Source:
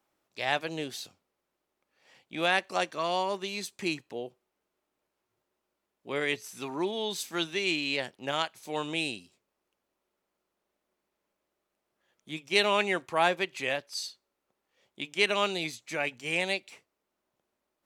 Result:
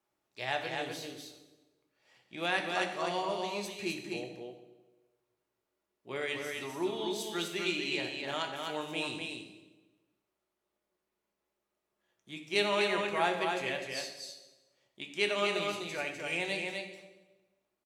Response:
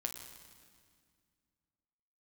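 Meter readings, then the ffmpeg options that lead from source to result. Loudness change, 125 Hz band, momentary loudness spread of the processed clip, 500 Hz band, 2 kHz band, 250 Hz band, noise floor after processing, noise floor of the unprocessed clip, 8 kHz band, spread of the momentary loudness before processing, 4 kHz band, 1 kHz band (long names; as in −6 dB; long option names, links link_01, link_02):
−3.5 dB, −3.0 dB, 16 LU, −2.5 dB, −3.5 dB, −2.5 dB, below −85 dBFS, −84 dBFS, −3.5 dB, 15 LU, −3.5 dB, −3.5 dB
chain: -filter_complex "[0:a]aecho=1:1:252:0.631[link_01];[1:a]atrim=start_sample=2205,asetrate=88200,aresample=44100[link_02];[link_01][link_02]afir=irnorm=-1:irlink=0,volume=1dB"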